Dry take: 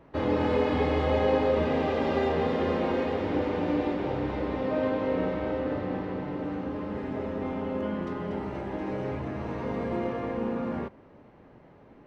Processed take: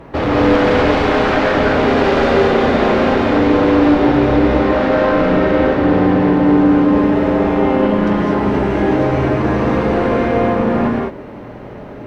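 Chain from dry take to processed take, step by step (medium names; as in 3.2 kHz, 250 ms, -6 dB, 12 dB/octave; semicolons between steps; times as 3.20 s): compression 1.5:1, threshold -33 dBFS, peak gain reduction 5 dB; sine folder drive 10 dB, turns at -17.5 dBFS; gated-style reverb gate 240 ms rising, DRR -2 dB; trim +3.5 dB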